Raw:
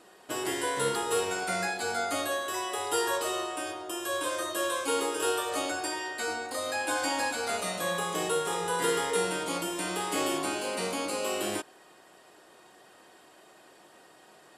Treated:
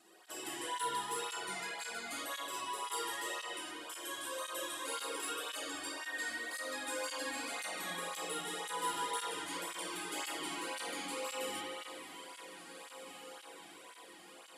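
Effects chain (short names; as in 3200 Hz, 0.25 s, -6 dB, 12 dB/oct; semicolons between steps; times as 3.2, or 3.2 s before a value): in parallel at -2.5 dB: compressor, threshold -44 dBFS, peak gain reduction 18.5 dB; on the sum: high shelf 2100 Hz +10 dB; resonator 110 Hz, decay 1.3 s, harmonics all, mix 70%; diffused feedback echo 1.853 s, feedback 52%, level -12 dB; spring tank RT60 2.8 s, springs 42/57 ms, chirp 30 ms, DRR -4 dB; soft clip -18 dBFS, distortion -26 dB; tape flanging out of phase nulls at 1.9 Hz, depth 2.2 ms; gain -6 dB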